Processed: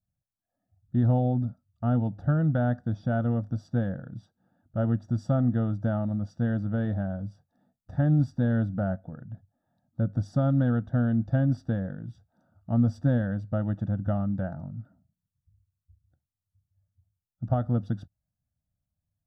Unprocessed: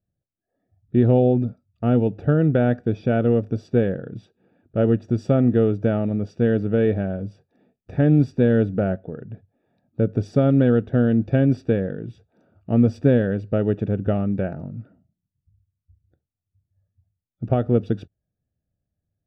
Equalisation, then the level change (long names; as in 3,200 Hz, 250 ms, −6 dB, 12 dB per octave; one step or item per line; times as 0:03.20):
phaser with its sweep stopped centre 1,000 Hz, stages 4
−2.5 dB